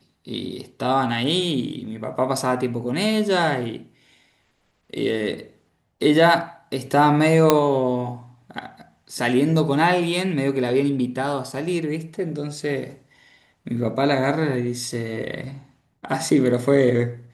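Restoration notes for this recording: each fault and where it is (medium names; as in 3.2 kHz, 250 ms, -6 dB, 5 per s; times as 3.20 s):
7.50 s: pop 0 dBFS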